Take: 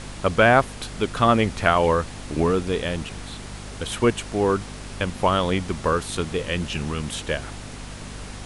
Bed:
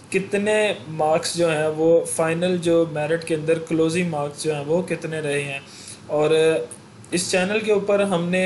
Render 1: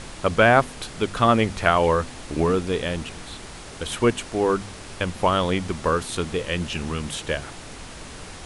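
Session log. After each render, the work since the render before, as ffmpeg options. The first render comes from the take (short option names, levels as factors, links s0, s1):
-af "bandreject=f=50:t=h:w=4,bandreject=f=100:t=h:w=4,bandreject=f=150:t=h:w=4,bandreject=f=200:t=h:w=4,bandreject=f=250:t=h:w=4"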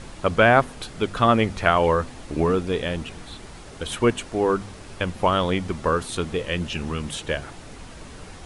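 -af "afftdn=nr=6:nf=-40"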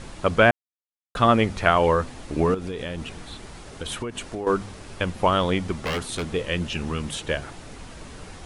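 -filter_complex "[0:a]asettb=1/sr,asplit=3[s0][s1][s2];[s0]atrim=end=2.544[s3];[s1]atrim=start=2.54:end=4.47,asetpts=PTS-STARTPTS,afade=t=in:d=0.004:c=qsin,afade=t=out:st=1.926:d=0.004:c=qsin,acompressor=threshold=0.0501:ratio=12:attack=3.2:release=140:knee=1:detection=peak[s4];[s2]atrim=start=4.466[s5];[s3][s4]acrossfade=d=0.004:c1=hsin:c2=qsin[s6];[s6][s5]acrossfade=d=0.004:c1=qsin:c2=hsin,asettb=1/sr,asplit=3[s7][s8][s9];[s7]atrim=end=5.734[s10];[s8]atrim=start=5.73:end=6.27,asetpts=PTS-STARTPTS,afade=t=in:d=0.004:c=qsin,afade=t=out:st=0.536:d=0.004:c=qsin,aeval=exprs='0.0944*(abs(mod(val(0)/0.0944+3,4)-2)-1)':c=same[s11];[s9]atrim=start=6.266[s12];[s10][s11]acrossfade=d=0.004:c1=hsin:c2=qsin[s13];[s13][s12]acrossfade=d=0.004:c1=qsin:c2=hsin,asplit=3[s14][s15][s16];[s14]atrim=end=0.51,asetpts=PTS-STARTPTS,afade=t=out:st=0.506:d=0.004:c=hsin[s17];[s15]atrim=start=0.51:end=1.15,asetpts=PTS-STARTPTS,volume=0[s18];[s16]atrim=start=1.15,asetpts=PTS-STARTPTS,afade=t=in:d=0.004:c=hsin[s19];[s17][s18][s19]concat=n=3:v=0:a=1"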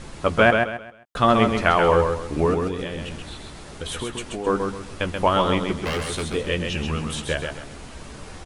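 -filter_complex "[0:a]asplit=2[s0][s1];[s1]adelay=14,volume=0.316[s2];[s0][s2]amix=inputs=2:normalize=0,aecho=1:1:132|264|396|528:0.562|0.174|0.054|0.0168"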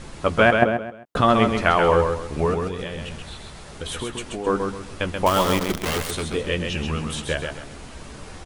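-filter_complex "[0:a]asettb=1/sr,asplit=3[s0][s1][s2];[s0]atrim=end=0.624[s3];[s1]atrim=start=0.62:end=1.21,asetpts=PTS-STARTPTS,afade=t=in:d=0.004:c=qsin,afade=t=out:st=0.586:d=0.004:c=qsin,equalizer=f=270:w=0.3:g=11.5[s4];[s2]atrim=start=1.206[s5];[s3][s4]acrossfade=d=0.004:c1=hsin:c2=qsin[s6];[s6][s5]acrossfade=d=0.004:c1=qsin:c2=hsin,asettb=1/sr,asplit=3[s7][s8][s9];[s7]atrim=end=2.274[s10];[s8]atrim=start=2.27:end=3.75,asetpts=PTS-STARTPTS,afade=t=in:d=0.004:c=qsin,afade=t=out:st=1.476:d=0.004:c=qsin,equalizer=f=300:t=o:w=0.44:g=-8.5[s11];[s9]atrim=start=3.746[s12];[s10][s11]acrossfade=d=0.004:c1=hsin:c2=qsin[s13];[s13][s12]acrossfade=d=0.004:c1=qsin:c2=hsin,asettb=1/sr,asplit=3[s14][s15][s16];[s14]atrim=end=5.264[s17];[s15]atrim=start=5.26:end=6.11,asetpts=PTS-STARTPTS,afade=t=in:d=0.004:c=qsin,afade=t=out:st=0.846:d=0.004:c=qsin,acrusher=bits=5:dc=4:mix=0:aa=0.000001[s18];[s16]atrim=start=6.106[s19];[s17][s18]acrossfade=d=0.004:c1=hsin:c2=qsin[s20];[s20][s19]acrossfade=d=0.004:c1=qsin:c2=hsin"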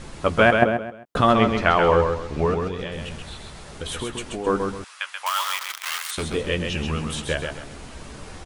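-filter_complex "[0:a]asettb=1/sr,asplit=3[s0][s1][s2];[s0]atrim=end=1.334[s3];[s1]atrim=start=1.33:end=2.92,asetpts=PTS-STARTPTS,afade=t=in:d=0.004:c=qsin,afade=t=out:st=1.586:d=0.004:c=qsin,lowpass=6200[s4];[s2]atrim=start=2.916[s5];[s3][s4]acrossfade=d=0.004:c1=hsin:c2=qsin[s6];[s6][s5]acrossfade=d=0.004:c1=qsin:c2=hsin,asettb=1/sr,asplit=3[s7][s8][s9];[s7]atrim=end=4.844[s10];[s8]atrim=start=4.84:end=6.18,asetpts=PTS-STARTPTS,afade=t=in:d=0.004:c=qsin,afade=t=out:st=1.336:d=0.004:c=qsin,highpass=f=1100:w=0.5412,highpass=f=1100:w=1.3066[s11];[s9]atrim=start=6.176[s12];[s10][s11]acrossfade=d=0.004:c1=hsin:c2=qsin[s13];[s13][s12]acrossfade=d=0.004:c1=qsin:c2=hsin"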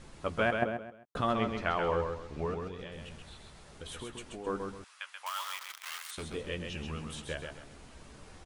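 -af "volume=0.224"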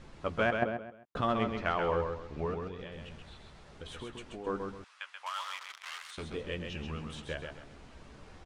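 -af "adynamicsmooth=sensitivity=3.5:basefreq=6000"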